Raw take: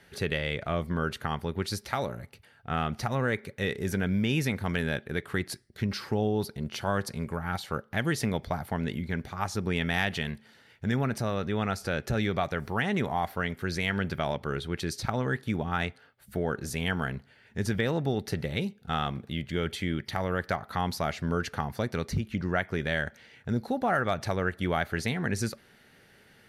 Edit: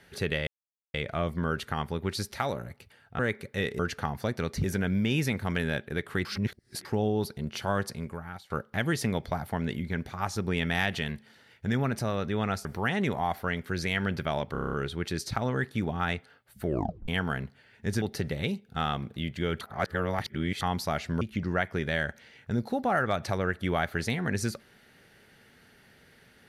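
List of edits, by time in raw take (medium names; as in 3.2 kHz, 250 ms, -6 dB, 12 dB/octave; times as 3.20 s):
0.47 s: insert silence 0.47 s
2.72–3.23 s: delete
5.44–6.04 s: reverse
7.01–7.69 s: fade out, to -19 dB
11.84–12.58 s: delete
14.45 s: stutter 0.03 s, 8 plays
16.38 s: tape stop 0.42 s
17.74–18.15 s: delete
19.74–20.74 s: reverse
21.34–22.19 s: move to 3.83 s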